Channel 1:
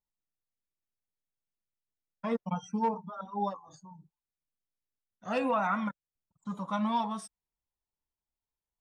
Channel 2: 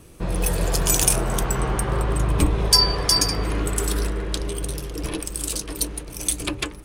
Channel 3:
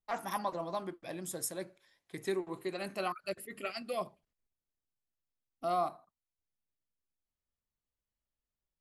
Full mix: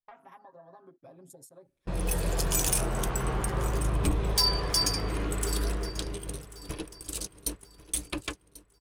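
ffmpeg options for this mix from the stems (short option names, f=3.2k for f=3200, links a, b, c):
-filter_complex "[1:a]agate=range=-31dB:threshold=-26dB:ratio=16:detection=peak,aeval=exprs='0.891*sin(PI/2*2.24*val(0)/0.891)':c=same,adelay=1650,volume=-17dB,asplit=2[a][b];[b]volume=-18dB[c];[2:a]acompressor=threshold=-50dB:ratio=2,afwtdn=0.002,volume=2.5dB,aecho=1:1:7.4:0.99,acompressor=threshold=-48dB:ratio=16,volume=0dB[d];[c]aecho=0:1:1090|2180|3270|4360|5450:1|0.33|0.109|0.0359|0.0119[e];[a][d][e]amix=inputs=3:normalize=0"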